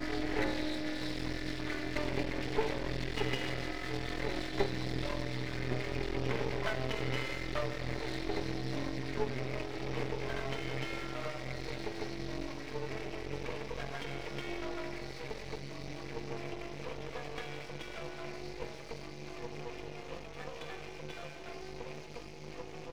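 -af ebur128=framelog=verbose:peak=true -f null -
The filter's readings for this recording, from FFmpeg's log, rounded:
Integrated loudness:
  I:         -38.9 LUFS
  Threshold: -48.9 LUFS
Loudness range:
  LRA:         8.4 LU
  Threshold: -58.9 LUFS
  LRA low:   -44.7 LUFS
  LRA high:  -36.3 LUFS
True peak:
  Peak:      -15.2 dBFS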